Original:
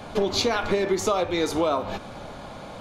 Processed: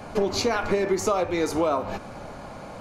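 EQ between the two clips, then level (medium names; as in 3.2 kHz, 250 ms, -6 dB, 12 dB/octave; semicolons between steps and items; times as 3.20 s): peaking EQ 3.5 kHz -10 dB 0.39 oct; 0.0 dB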